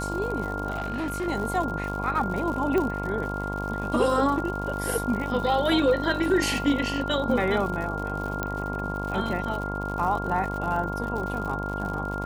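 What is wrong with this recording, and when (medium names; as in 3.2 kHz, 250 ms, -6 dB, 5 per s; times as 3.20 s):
buzz 50 Hz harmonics 22 -32 dBFS
crackle 110 per s -32 dBFS
whine 1.4 kHz -32 dBFS
0.70–1.28 s: clipped -25.5 dBFS
2.78 s: pop -15 dBFS
8.43 s: pop -13 dBFS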